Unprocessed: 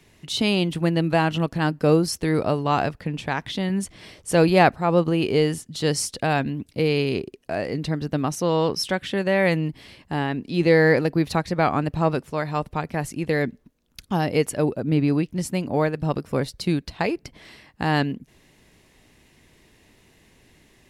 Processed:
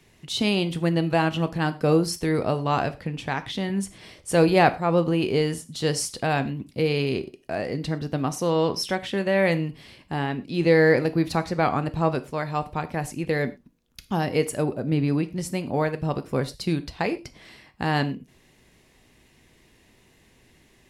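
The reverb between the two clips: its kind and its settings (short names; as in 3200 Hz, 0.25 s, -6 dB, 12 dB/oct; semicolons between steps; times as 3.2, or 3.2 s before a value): non-linear reverb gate 0.14 s falling, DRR 10.5 dB; gain -2 dB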